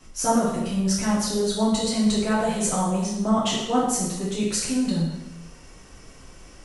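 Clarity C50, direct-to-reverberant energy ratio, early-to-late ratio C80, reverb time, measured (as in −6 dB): 1.5 dB, −7.0 dB, 4.5 dB, 0.85 s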